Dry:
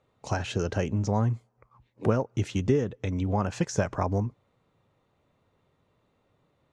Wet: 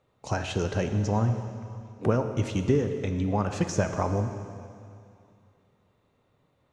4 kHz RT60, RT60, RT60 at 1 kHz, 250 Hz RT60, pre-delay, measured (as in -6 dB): 2.3 s, 2.5 s, 2.5 s, 2.6 s, 7 ms